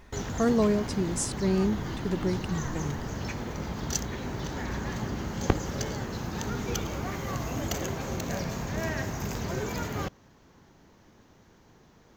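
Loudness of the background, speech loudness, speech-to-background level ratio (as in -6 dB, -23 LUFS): -33.5 LUFS, -29.0 LUFS, 4.5 dB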